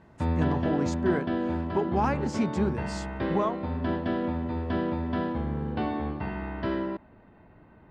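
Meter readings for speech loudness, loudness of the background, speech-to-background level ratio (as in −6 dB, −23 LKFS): −30.5 LKFS, −30.5 LKFS, 0.0 dB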